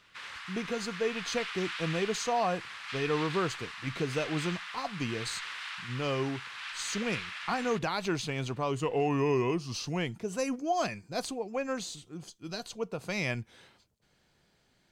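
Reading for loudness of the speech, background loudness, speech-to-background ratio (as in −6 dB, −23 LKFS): −33.5 LKFS, −39.5 LKFS, 6.0 dB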